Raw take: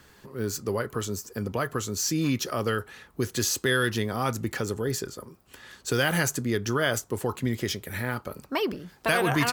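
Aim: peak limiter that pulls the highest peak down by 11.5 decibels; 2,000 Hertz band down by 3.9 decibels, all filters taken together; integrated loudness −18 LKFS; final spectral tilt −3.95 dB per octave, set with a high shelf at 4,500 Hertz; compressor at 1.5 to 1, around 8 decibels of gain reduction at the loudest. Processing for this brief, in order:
parametric band 2,000 Hz −6.5 dB
high-shelf EQ 4,500 Hz +7 dB
downward compressor 1.5 to 1, threshold −43 dBFS
level +20.5 dB
brickwall limiter −7 dBFS

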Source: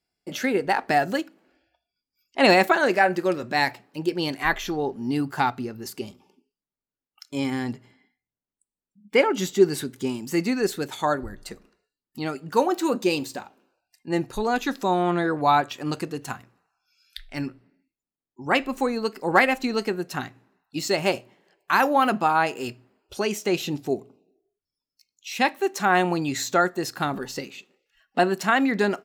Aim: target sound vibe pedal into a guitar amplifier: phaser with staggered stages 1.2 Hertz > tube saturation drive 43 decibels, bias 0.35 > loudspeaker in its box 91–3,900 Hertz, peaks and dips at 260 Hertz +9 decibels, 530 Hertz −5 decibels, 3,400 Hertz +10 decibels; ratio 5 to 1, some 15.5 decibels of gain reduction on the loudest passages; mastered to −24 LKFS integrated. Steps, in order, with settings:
downward compressor 5 to 1, threshold −30 dBFS
phaser with staggered stages 1.2 Hz
tube saturation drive 43 dB, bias 0.35
loudspeaker in its box 91–3,900 Hz, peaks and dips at 260 Hz +9 dB, 530 Hz −5 dB, 3,400 Hz +10 dB
level +21 dB

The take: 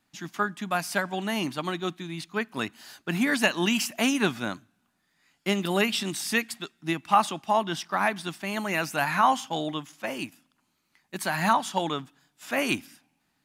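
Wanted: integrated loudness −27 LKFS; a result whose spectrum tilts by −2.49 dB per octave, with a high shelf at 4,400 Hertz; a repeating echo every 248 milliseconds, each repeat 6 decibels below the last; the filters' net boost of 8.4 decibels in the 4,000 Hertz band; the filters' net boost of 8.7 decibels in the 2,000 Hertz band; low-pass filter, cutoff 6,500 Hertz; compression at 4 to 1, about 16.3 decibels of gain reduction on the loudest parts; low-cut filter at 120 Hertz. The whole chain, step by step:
high-pass filter 120 Hz
low-pass filter 6,500 Hz
parametric band 2,000 Hz +8.5 dB
parametric band 4,000 Hz +4 dB
high-shelf EQ 4,400 Hz +8 dB
downward compressor 4 to 1, threshold −32 dBFS
repeating echo 248 ms, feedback 50%, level −6 dB
level +6 dB

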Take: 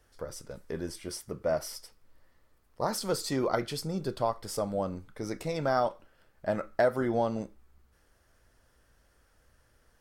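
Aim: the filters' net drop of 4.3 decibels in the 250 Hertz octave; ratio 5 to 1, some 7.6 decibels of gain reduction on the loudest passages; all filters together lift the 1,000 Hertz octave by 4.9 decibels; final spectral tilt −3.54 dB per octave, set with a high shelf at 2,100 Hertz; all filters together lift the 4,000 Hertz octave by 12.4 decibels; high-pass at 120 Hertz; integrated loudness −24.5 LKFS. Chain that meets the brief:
high-pass filter 120 Hz
parametric band 250 Hz −6 dB
parametric band 1,000 Hz +5.5 dB
high-shelf EQ 2,100 Hz +6.5 dB
parametric band 4,000 Hz +9 dB
downward compressor 5 to 1, threshold −26 dBFS
level +8 dB

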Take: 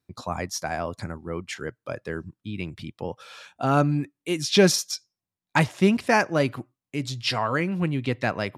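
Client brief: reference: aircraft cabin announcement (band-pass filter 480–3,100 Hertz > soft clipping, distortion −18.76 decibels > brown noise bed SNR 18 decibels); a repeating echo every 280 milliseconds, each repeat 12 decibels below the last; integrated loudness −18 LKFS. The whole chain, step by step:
band-pass filter 480–3,100 Hz
repeating echo 280 ms, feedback 25%, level −12 dB
soft clipping −13 dBFS
brown noise bed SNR 18 dB
level +12.5 dB

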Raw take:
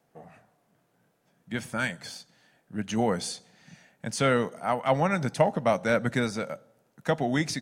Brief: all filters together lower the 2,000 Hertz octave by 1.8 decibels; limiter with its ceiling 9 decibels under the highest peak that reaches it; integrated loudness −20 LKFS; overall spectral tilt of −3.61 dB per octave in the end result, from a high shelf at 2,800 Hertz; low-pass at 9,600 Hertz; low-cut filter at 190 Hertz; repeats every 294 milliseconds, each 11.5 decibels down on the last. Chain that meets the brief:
high-pass filter 190 Hz
low-pass filter 9,600 Hz
parametric band 2,000 Hz −4.5 dB
high-shelf EQ 2,800 Hz +6 dB
brickwall limiter −18 dBFS
repeating echo 294 ms, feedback 27%, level −11.5 dB
level +11.5 dB

